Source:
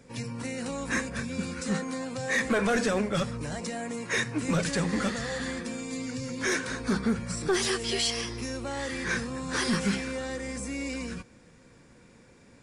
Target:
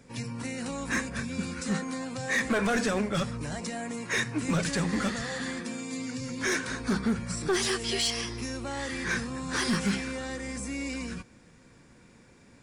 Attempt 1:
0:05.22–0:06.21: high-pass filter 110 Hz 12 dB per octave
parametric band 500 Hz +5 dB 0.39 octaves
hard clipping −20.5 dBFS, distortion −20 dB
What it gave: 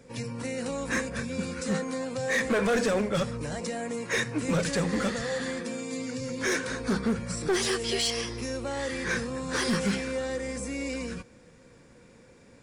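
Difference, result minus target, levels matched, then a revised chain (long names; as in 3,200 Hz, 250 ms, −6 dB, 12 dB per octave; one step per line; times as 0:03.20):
500 Hz band +4.0 dB
0:05.22–0:06.21: high-pass filter 110 Hz 12 dB per octave
parametric band 500 Hz −4 dB 0.39 octaves
hard clipping −20.5 dBFS, distortion −28 dB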